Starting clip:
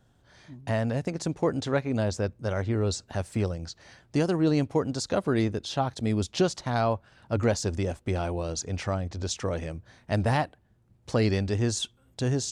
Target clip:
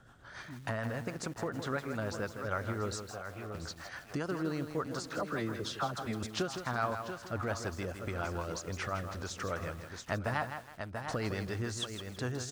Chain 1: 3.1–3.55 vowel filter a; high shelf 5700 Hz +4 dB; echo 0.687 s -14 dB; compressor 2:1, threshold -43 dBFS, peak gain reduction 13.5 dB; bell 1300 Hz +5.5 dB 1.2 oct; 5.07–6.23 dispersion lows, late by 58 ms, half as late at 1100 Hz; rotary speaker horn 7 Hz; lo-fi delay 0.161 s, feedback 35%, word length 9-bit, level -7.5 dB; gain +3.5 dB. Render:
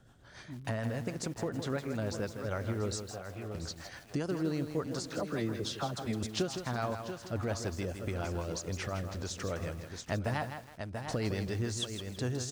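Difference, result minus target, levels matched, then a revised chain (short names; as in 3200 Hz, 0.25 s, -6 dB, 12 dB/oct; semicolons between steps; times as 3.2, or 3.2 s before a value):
1000 Hz band -4.5 dB; compressor: peak gain reduction -3 dB
3.1–3.55 vowel filter a; high shelf 5700 Hz +4 dB; echo 0.687 s -14 dB; compressor 2:1, threshold -49 dBFS, peak gain reduction 16.5 dB; bell 1300 Hz +15 dB 1.2 oct; 5.07–6.23 dispersion lows, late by 58 ms, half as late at 1100 Hz; rotary speaker horn 7 Hz; lo-fi delay 0.161 s, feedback 35%, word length 9-bit, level -7.5 dB; gain +3.5 dB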